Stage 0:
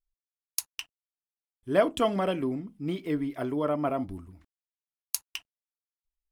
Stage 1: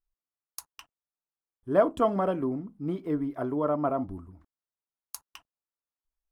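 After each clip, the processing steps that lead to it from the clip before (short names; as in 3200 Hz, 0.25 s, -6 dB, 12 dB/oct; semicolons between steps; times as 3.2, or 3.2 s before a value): resonant high shelf 1700 Hz -10 dB, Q 1.5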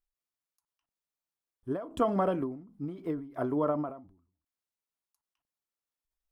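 ending taper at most 100 dB/s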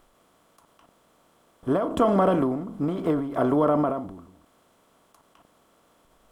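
per-bin compression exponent 0.6; in parallel at -1 dB: limiter -21.5 dBFS, peak gain reduction 8.5 dB; on the sum: gain +1.5 dB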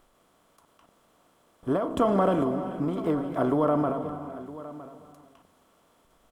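echo 0.961 s -16.5 dB; non-linear reverb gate 0.47 s rising, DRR 10.5 dB; gain -2.5 dB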